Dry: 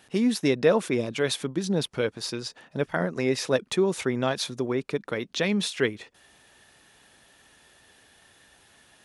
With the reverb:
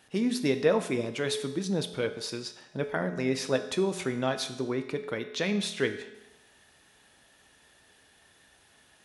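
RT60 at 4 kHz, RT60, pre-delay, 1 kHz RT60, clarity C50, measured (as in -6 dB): 0.90 s, 0.95 s, 5 ms, 0.95 s, 11.0 dB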